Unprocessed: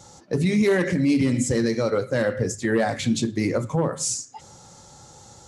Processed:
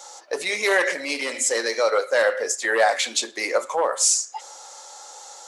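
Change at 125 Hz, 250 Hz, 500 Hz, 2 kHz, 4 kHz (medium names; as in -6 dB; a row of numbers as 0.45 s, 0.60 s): under -35 dB, -16.0 dB, +1.5 dB, +7.5 dB, +7.5 dB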